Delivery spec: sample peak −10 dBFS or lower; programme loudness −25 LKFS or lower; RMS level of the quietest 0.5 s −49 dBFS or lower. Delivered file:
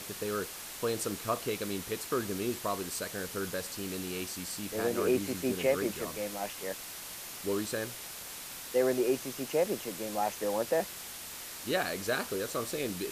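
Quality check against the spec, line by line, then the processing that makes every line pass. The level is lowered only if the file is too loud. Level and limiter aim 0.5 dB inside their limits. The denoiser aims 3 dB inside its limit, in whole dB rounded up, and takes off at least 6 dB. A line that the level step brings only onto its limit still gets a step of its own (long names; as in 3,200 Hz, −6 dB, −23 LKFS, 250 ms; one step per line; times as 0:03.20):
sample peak −17.0 dBFS: in spec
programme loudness −33.5 LKFS: in spec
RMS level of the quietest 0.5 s −44 dBFS: out of spec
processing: broadband denoise 8 dB, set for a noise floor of −44 dBFS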